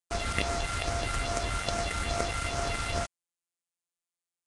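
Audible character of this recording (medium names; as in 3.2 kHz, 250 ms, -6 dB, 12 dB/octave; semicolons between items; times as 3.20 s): a buzz of ramps at a fixed pitch in blocks of 64 samples; phasing stages 4, 2.4 Hz, lowest notch 560–3400 Hz; a quantiser's noise floor 6-bit, dither none; Nellymoser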